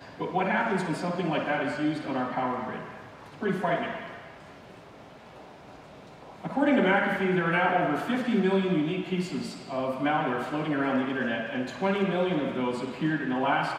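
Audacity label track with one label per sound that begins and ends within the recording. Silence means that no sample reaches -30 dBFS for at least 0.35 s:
3.420000	4.060000	sound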